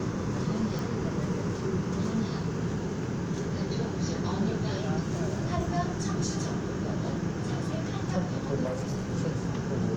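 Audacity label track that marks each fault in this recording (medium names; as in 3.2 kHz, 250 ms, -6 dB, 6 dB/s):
0.790000	0.790000	pop
8.650000	9.140000	clipped -28 dBFS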